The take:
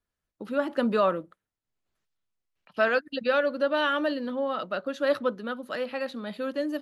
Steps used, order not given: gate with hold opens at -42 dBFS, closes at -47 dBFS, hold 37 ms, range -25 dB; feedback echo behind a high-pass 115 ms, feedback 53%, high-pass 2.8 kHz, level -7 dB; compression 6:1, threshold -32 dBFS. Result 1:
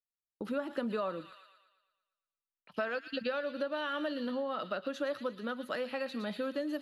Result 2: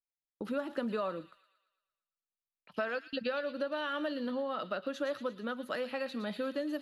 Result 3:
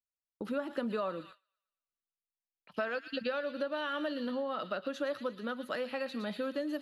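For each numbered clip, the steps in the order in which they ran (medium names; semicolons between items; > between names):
gate with hold > feedback echo behind a high-pass > compression; compression > gate with hold > feedback echo behind a high-pass; feedback echo behind a high-pass > compression > gate with hold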